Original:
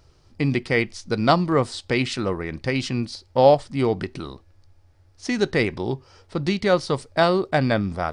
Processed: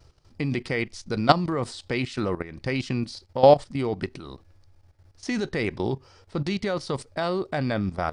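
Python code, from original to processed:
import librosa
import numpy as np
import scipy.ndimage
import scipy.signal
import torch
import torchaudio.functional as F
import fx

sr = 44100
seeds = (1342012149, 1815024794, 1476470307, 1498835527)

y = fx.level_steps(x, sr, step_db=14)
y = y * librosa.db_to_amplitude(2.5)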